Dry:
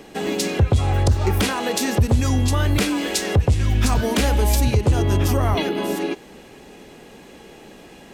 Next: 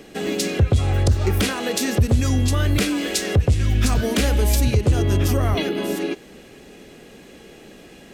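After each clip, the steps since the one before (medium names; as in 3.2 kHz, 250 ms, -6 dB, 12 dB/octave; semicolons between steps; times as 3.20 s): peaking EQ 910 Hz -8 dB 0.51 oct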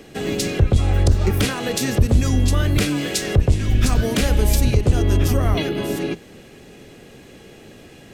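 octave divider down 1 oct, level -3 dB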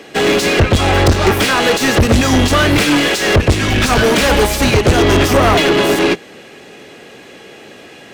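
overdrive pedal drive 33 dB, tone 3.4 kHz, clips at -4 dBFS; upward expansion 2.5:1, over -21 dBFS; trim +3.5 dB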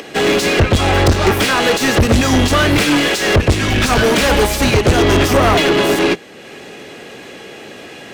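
upward compressor, threshold -26 dBFS; trim -1 dB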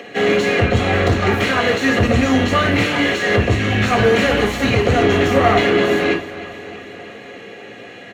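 feedback delay 314 ms, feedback 60%, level -15.5 dB; reverberation, pre-delay 3 ms, DRR 1 dB; trim -15.5 dB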